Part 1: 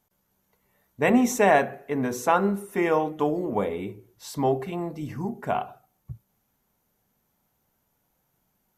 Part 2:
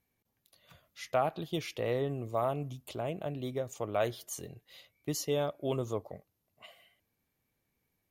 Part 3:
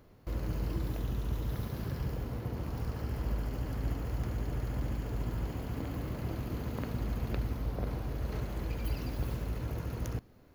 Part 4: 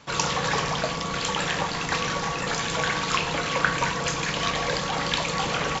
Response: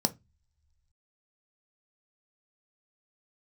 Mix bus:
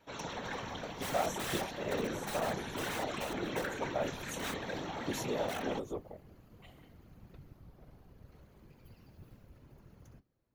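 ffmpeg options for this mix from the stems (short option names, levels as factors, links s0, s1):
-filter_complex "[0:a]aeval=exprs='(mod(8.91*val(0)+1,2)-1)/8.91':c=same,volume=0.299,asplit=2[s0][s1];[s1]volume=0.106[s2];[1:a]volume=0.891,asplit=2[s3][s4];[s4]volume=0.112[s5];[2:a]flanger=delay=9.1:depth=5.5:regen=-51:speed=0.58:shape=triangular,volume=0.282[s6];[3:a]lowpass=4700,volume=7.08,asoftclip=hard,volume=0.141,volume=0.282,asplit=2[s7][s8];[s8]volume=0.237[s9];[4:a]atrim=start_sample=2205[s10];[s2][s5][s9]amix=inputs=3:normalize=0[s11];[s11][s10]afir=irnorm=-1:irlink=0[s12];[s0][s3][s6][s7][s12]amix=inputs=5:normalize=0,afftfilt=real='hypot(re,im)*cos(2*PI*random(0))':imag='hypot(re,im)*sin(2*PI*random(1))':win_size=512:overlap=0.75"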